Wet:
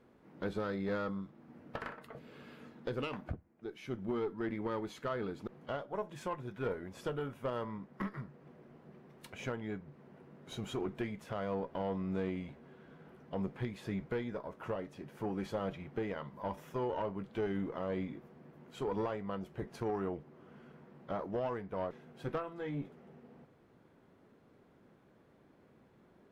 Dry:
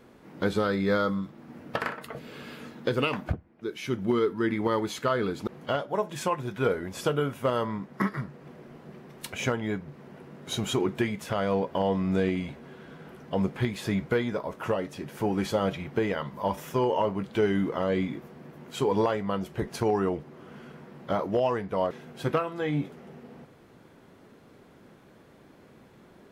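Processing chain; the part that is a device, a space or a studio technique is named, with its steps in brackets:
tube preamp driven hard (tube saturation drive 19 dB, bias 0.45; high-shelf EQ 3,000 Hz −8.5 dB)
level −8 dB

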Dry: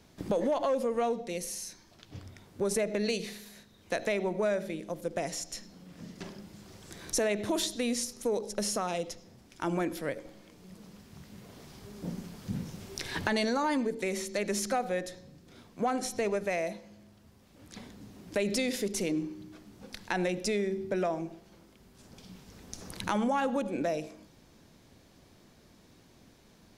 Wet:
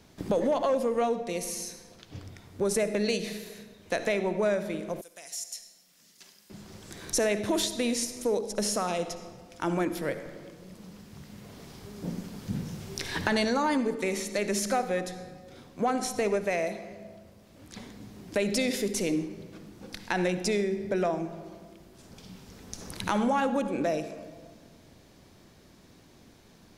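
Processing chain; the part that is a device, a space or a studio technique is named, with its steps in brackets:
compressed reverb return (on a send at −8.5 dB: convolution reverb RT60 1.5 s, pre-delay 53 ms + downward compressor, threshold −30 dBFS, peak gain reduction 8 dB)
0:05.01–0:06.50: on the sum: first-order pre-emphasis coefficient 0.97
level +2.5 dB

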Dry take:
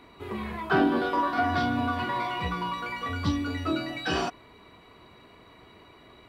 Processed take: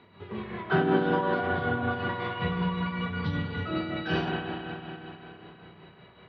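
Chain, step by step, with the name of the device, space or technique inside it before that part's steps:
0:01.47–0:01.91: high-frequency loss of the air 230 metres
combo amplifier with spring reverb and tremolo (spring reverb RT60 3.6 s, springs 31/50 ms, chirp 35 ms, DRR −0.5 dB; amplitude tremolo 5.3 Hz, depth 44%; loudspeaker in its box 94–3,700 Hz, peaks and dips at 100 Hz +5 dB, 170 Hz +8 dB, 290 Hz −10 dB, 700 Hz −4 dB, 1,100 Hz −6 dB, 2,300 Hz −5 dB)

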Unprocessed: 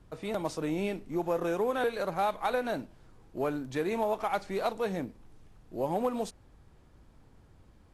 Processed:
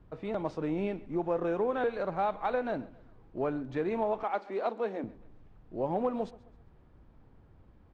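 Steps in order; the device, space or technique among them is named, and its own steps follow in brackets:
phone in a pocket (low-pass filter 3,700 Hz 12 dB per octave; high-shelf EQ 2,100 Hz −8 dB)
0:04.23–0:05.04: elliptic high-pass filter 220 Hz
repeating echo 133 ms, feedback 40%, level −21 dB

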